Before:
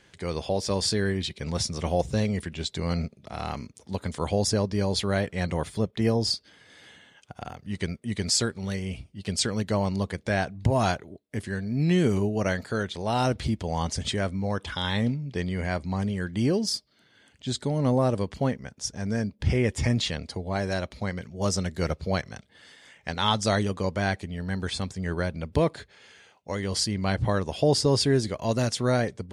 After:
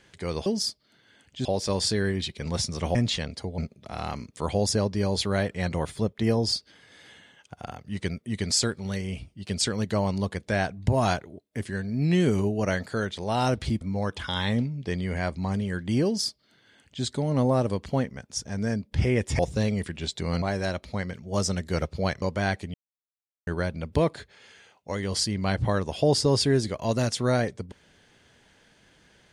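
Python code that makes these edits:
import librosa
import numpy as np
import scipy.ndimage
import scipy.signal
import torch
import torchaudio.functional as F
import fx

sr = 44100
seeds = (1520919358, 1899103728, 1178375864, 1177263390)

y = fx.edit(x, sr, fx.swap(start_s=1.96, length_s=1.03, other_s=19.87, other_length_s=0.63),
    fx.cut(start_s=3.78, length_s=0.37),
    fx.cut(start_s=13.59, length_s=0.7),
    fx.duplicate(start_s=16.53, length_s=0.99, to_s=0.46),
    fx.cut(start_s=22.3, length_s=1.52),
    fx.silence(start_s=24.34, length_s=0.73), tone=tone)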